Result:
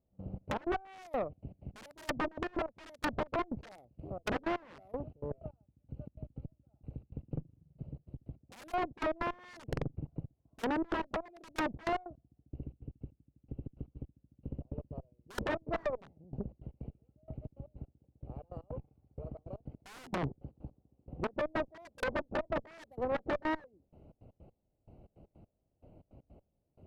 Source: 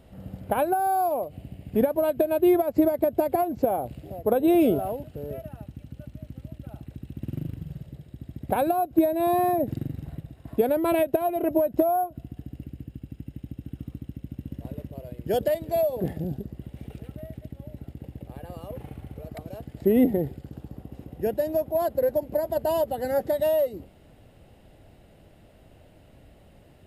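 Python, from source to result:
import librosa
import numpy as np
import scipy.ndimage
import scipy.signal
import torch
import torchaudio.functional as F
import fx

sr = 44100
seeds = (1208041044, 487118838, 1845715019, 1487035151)

y = fx.wiener(x, sr, points=25)
y = (np.mod(10.0 ** (20.0 / 20.0) * y + 1.0, 2.0) - 1.0) / 10.0 ** (20.0 / 20.0)
y = fx.step_gate(y, sr, bpm=158, pattern='..xx.x.x..', floor_db=-24.0, edge_ms=4.5)
y = fx.env_lowpass_down(y, sr, base_hz=1100.0, full_db=-26.5)
y = fx.tube_stage(y, sr, drive_db=28.0, bias=0.7)
y = y * librosa.db_to_amplitude(1.0)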